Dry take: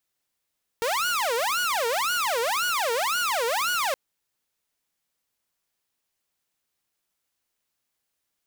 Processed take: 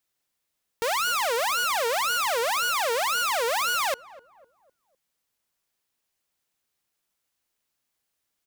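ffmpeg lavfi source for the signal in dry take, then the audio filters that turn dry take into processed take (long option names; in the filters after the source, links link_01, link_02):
-f lavfi -i "aevalsrc='0.0944*(2*mod((958*t-502/(2*PI*1.9)*sin(2*PI*1.9*t)),1)-1)':duration=3.12:sample_rate=44100"
-filter_complex "[0:a]asplit=2[link_01][link_02];[link_02]adelay=252,lowpass=frequency=900:poles=1,volume=-17dB,asplit=2[link_03][link_04];[link_04]adelay=252,lowpass=frequency=900:poles=1,volume=0.49,asplit=2[link_05][link_06];[link_06]adelay=252,lowpass=frequency=900:poles=1,volume=0.49,asplit=2[link_07][link_08];[link_08]adelay=252,lowpass=frequency=900:poles=1,volume=0.49[link_09];[link_01][link_03][link_05][link_07][link_09]amix=inputs=5:normalize=0"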